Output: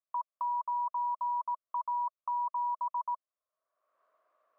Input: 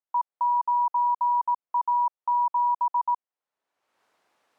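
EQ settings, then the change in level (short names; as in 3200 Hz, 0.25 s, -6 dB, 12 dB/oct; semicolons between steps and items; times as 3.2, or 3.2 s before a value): double band-pass 840 Hz, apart 0.82 oct; dynamic EQ 810 Hz, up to -3 dB, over -43 dBFS, Q 0.79; +4.5 dB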